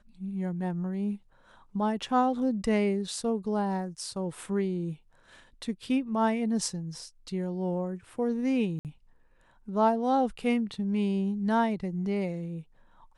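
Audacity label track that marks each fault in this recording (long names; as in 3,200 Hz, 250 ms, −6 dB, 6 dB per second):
8.790000	8.850000	drop-out 58 ms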